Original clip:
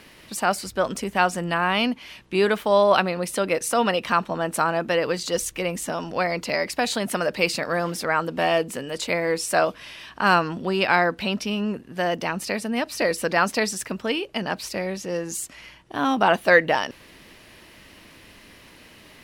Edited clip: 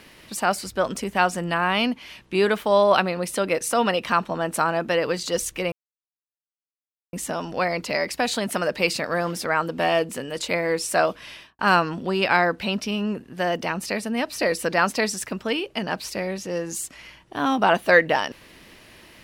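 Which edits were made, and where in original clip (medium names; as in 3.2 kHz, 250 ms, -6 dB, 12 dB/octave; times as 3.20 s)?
5.72 s: insert silence 1.41 s
9.93–10.18 s: studio fade out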